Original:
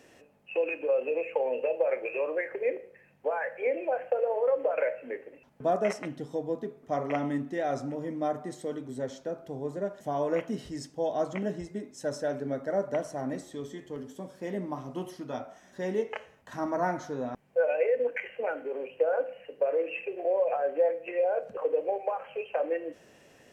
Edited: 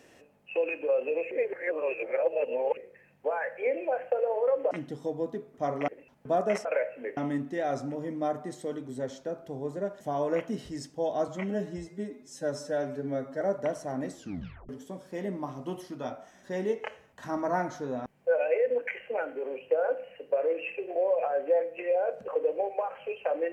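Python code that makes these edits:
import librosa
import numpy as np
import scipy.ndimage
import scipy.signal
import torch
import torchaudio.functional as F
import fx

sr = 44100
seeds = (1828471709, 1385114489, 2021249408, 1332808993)

y = fx.edit(x, sr, fx.reverse_span(start_s=1.31, length_s=1.46),
    fx.swap(start_s=4.71, length_s=0.52, other_s=6.0, other_length_s=1.17),
    fx.stretch_span(start_s=11.28, length_s=1.42, factor=1.5),
    fx.tape_stop(start_s=13.44, length_s=0.54), tone=tone)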